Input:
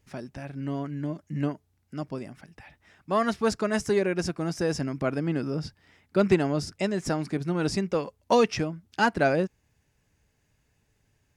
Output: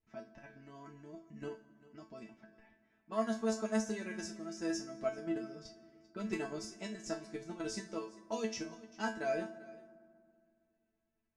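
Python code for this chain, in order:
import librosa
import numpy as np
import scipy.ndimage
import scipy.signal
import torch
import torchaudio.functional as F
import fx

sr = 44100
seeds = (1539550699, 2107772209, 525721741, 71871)

p1 = fx.rider(x, sr, range_db=3, speed_s=2.0)
p2 = x + (p1 * librosa.db_to_amplitude(-1.0))
p3 = fx.env_lowpass(p2, sr, base_hz=2000.0, full_db=-17.5)
p4 = p3 + fx.echo_single(p3, sr, ms=394, db=-20.5, dry=0)
p5 = fx.level_steps(p4, sr, step_db=10)
p6 = fx.peak_eq(p5, sr, hz=6600.0, db=10.0, octaves=0.51)
p7 = fx.resonator_bank(p6, sr, root=57, chord='fifth', decay_s=0.27)
y = fx.rev_fdn(p7, sr, rt60_s=2.2, lf_ratio=1.25, hf_ratio=0.55, size_ms=26.0, drr_db=14.5)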